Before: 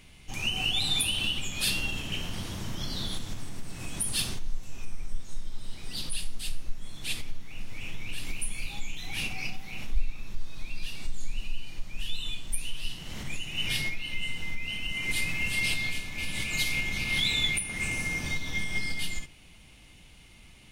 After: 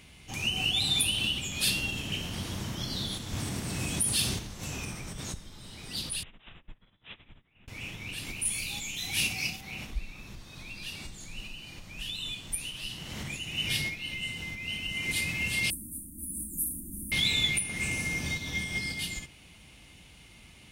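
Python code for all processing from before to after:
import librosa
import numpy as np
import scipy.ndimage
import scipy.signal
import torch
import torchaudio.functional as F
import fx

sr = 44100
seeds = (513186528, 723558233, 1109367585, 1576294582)

y = fx.chain(x, sr, fx.highpass(hz=40.0, slope=12),
    fx.env_flatten(amount_pct=50), at=(3.33, 5.34))
y = fx.chain(y, sr, fx.resample_bad(factor=6, down='none', up='filtered'),
    fx.upward_expand(threshold_db=-40.0, expansion=2.5), at=(6.23, 7.68))
y = fx.chain(y, sr, fx.high_shelf(hz=3500.0, db=10.0),
    fx.doubler(ms=18.0, db=-13.0), at=(8.45, 9.61))
y = fx.chain(y, sr, fx.cheby1_bandstop(low_hz=340.0, high_hz=9300.0, order=4),
    fx.high_shelf(hz=5200.0, db=11.0),
    fx.fixed_phaser(hz=630.0, stages=8), at=(15.7, 17.12))
y = scipy.signal.sosfilt(scipy.signal.butter(2, 50.0, 'highpass', fs=sr, output='sos'), y)
y = fx.dynamic_eq(y, sr, hz=1200.0, q=0.72, threshold_db=-43.0, ratio=4.0, max_db=-4)
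y = y * librosa.db_to_amplitude(1.5)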